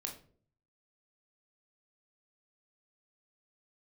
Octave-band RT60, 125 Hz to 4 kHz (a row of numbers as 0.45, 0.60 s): 0.85, 0.65, 0.60, 0.40, 0.35, 0.30 s